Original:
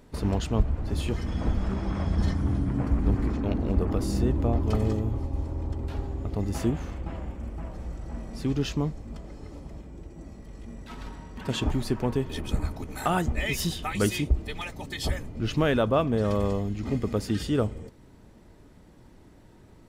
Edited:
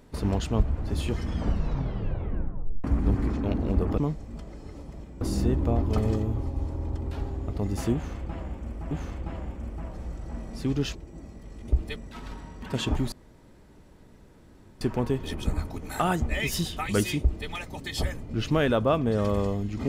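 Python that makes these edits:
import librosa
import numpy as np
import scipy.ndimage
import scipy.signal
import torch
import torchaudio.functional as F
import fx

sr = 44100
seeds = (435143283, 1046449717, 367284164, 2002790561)

y = fx.edit(x, sr, fx.tape_stop(start_s=1.33, length_s=1.51),
    fx.repeat(start_s=6.71, length_s=0.97, count=2),
    fx.move(start_s=8.75, length_s=1.23, to_s=3.98),
    fx.insert_room_tone(at_s=11.87, length_s=1.69),
    fx.duplicate(start_s=14.26, length_s=0.28, to_s=10.71), tone=tone)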